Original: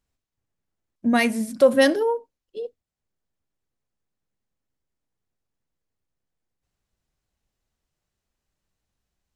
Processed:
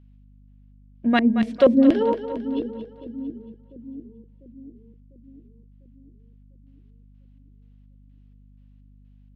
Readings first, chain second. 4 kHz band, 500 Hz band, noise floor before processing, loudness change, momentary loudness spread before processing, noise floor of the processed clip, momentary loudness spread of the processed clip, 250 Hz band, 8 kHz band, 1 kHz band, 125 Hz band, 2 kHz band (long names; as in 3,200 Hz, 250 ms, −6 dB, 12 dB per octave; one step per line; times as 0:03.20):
−5.0 dB, −1.0 dB, −84 dBFS, −0.5 dB, 19 LU, −52 dBFS, 21 LU, +5.5 dB, below −20 dB, 0.0 dB, can't be measured, −5.0 dB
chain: auto-filter low-pass square 2.1 Hz 290–3,000 Hz
echo with a time of its own for lows and highs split 340 Hz, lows 698 ms, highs 226 ms, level −10.5 dB
mains hum 50 Hz, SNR 25 dB